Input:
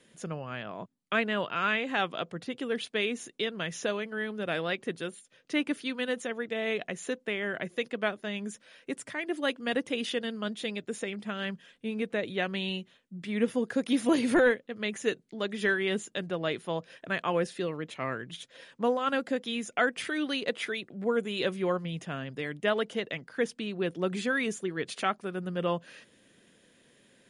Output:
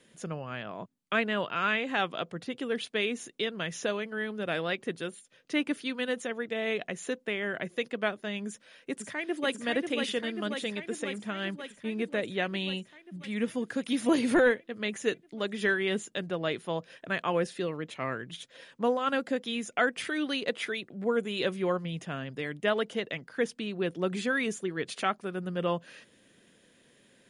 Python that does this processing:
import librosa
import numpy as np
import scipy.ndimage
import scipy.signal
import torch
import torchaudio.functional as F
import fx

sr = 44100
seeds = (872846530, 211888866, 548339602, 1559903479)

y = fx.echo_throw(x, sr, start_s=8.46, length_s=1.08, ms=540, feedback_pct=75, wet_db=-5.0)
y = fx.peak_eq(y, sr, hz=500.0, db=-5.0, octaves=2.0, at=(13.16, 14.02))